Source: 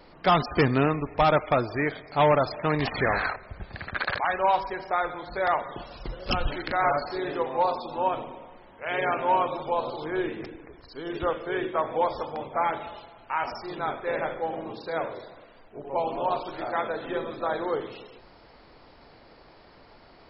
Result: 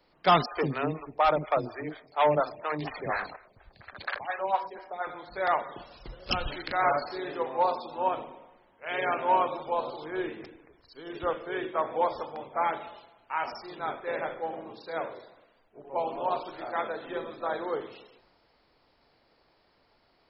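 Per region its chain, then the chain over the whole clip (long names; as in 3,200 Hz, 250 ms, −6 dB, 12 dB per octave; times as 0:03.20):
0:00.46–0:05.07: multiband delay without the direct sound highs, lows 50 ms, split 340 Hz + phaser with staggered stages 4.2 Hz
whole clip: low-shelf EQ 120 Hz −10 dB; multiband upward and downward expander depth 40%; level −2.5 dB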